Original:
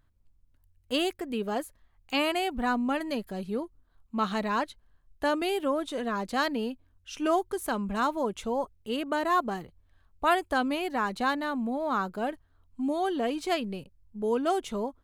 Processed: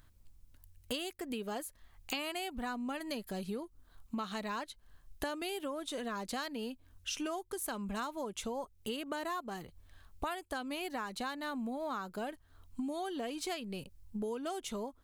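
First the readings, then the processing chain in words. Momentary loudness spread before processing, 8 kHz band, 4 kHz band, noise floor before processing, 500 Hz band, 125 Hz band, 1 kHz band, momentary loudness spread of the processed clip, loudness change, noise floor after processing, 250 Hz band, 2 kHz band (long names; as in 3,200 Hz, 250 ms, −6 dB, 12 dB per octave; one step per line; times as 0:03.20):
8 LU, 0.0 dB, −6.0 dB, −66 dBFS, −10.5 dB, −6.5 dB, −11.5 dB, 6 LU, −10.0 dB, −64 dBFS, −9.0 dB, −9.5 dB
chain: high-shelf EQ 3,000 Hz +9.5 dB
downward compressor 10 to 1, threshold −41 dBFS, peak gain reduction 23 dB
level +5 dB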